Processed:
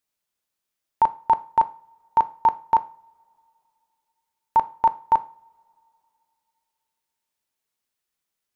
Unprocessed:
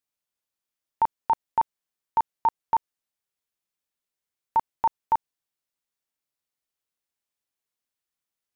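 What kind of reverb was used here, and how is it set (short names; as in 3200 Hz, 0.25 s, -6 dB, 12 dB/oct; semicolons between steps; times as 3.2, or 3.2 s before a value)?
two-slope reverb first 0.38 s, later 2.8 s, from -27 dB, DRR 12.5 dB; gain +4.5 dB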